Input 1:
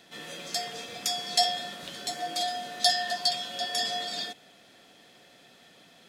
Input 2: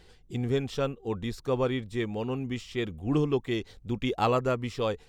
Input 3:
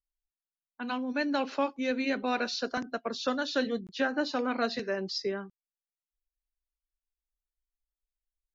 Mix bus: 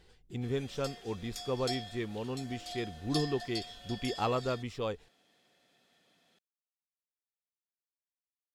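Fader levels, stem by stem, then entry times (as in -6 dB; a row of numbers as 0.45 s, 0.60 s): -14.0 dB, -6.0 dB, mute; 0.30 s, 0.00 s, mute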